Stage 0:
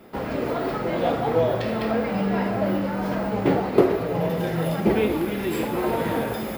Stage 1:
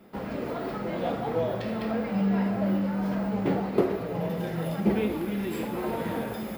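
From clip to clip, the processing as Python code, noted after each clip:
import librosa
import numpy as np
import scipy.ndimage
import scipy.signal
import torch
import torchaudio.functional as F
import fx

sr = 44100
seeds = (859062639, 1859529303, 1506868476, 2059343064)

y = fx.peak_eq(x, sr, hz=200.0, db=8.0, octaves=0.26)
y = y * librosa.db_to_amplitude(-7.0)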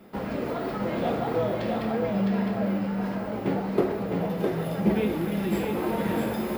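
y = fx.rider(x, sr, range_db=3, speed_s=2.0)
y = y + 10.0 ** (-4.0 / 20.0) * np.pad(y, (int(659 * sr / 1000.0), 0))[:len(y)]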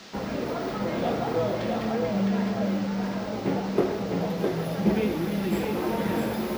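y = fx.dmg_noise_band(x, sr, seeds[0], low_hz=540.0, high_hz=5600.0, level_db=-48.0)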